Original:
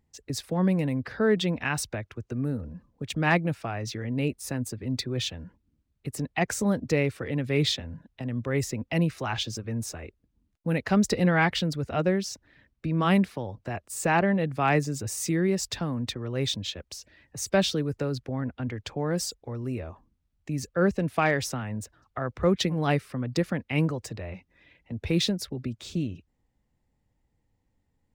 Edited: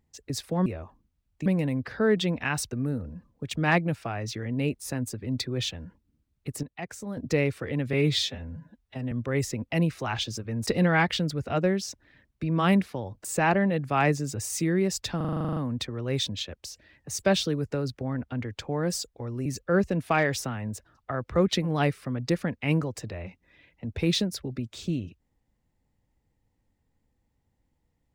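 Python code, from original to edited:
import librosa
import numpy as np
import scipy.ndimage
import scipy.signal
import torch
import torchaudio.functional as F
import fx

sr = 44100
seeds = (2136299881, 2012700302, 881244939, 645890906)

y = fx.edit(x, sr, fx.cut(start_s=1.91, length_s=0.39),
    fx.clip_gain(start_s=6.22, length_s=0.54, db=-11.0),
    fx.stretch_span(start_s=7.52, length_s=0.79, factor=1.5),
    fx.cut(start_s=9.86, length_s=1.23),
    fx.cut(start_s=13.67, length_s=0.25),
    fx.stutter(start_s=15.84, slice_s=0.04, count=11),
    fx.move(start_s=19.73, length_s=0.8, to_s=0.66), tone=tone)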